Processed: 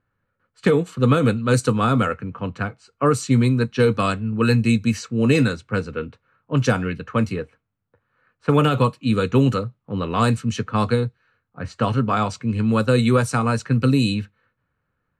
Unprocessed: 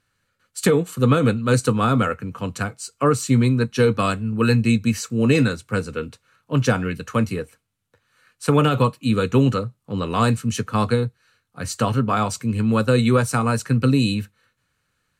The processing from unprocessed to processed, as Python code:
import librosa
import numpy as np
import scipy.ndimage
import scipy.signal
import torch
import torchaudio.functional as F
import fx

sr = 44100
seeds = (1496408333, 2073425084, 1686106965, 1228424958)

y = fx.env_lowpass(x, sr, base_hz=1300.0, full_db=-13.0)